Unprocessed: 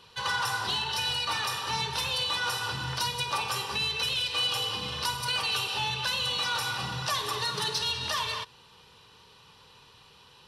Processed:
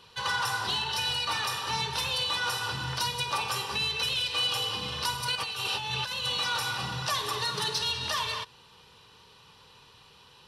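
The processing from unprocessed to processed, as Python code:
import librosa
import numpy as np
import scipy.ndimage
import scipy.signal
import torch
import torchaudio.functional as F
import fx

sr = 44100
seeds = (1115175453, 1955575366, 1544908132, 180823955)

y = fx.over_compress(x, sr, threshold_db=-32.0, ratio=-0.5, at=(5.35, 6.25))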